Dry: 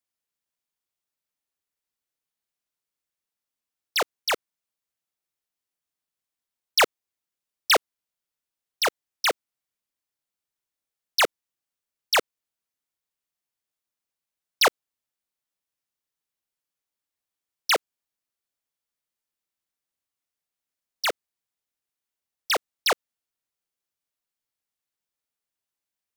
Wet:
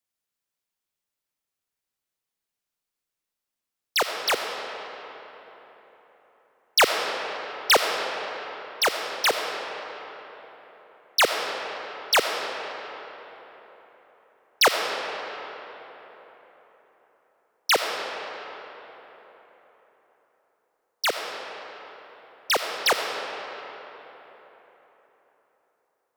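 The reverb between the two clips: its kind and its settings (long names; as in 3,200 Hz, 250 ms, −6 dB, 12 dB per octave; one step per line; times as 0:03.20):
comb and all-pass reverb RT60 4.1 s, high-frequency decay 0.6×, pre-delay 30 ms, DRR 4 dB
level +1 dB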